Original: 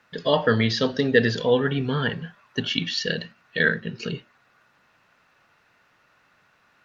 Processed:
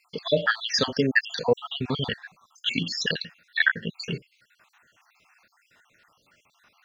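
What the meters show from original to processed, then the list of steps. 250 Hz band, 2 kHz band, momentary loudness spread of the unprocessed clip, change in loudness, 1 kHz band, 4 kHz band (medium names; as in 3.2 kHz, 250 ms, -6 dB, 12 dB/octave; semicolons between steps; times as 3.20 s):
-5.5 dB, 0.0 dB, 13 LU, -2.5 dB, -3.5 dB, 0.0 dB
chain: random holes in the spectrogram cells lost 61%; treble shelf 2.5 kHz +10 dB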